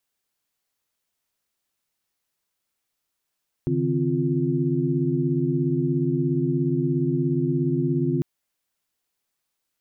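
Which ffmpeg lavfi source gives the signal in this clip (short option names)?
-f lavfi -i "aevalsrc='0.0531*(sin(2*PI*138.59*t)+sin(2*PI*155.56*t)+sin(2*PI*261.63*t)+sin(2*PI*349.23*t))':d=4.55:s=44100"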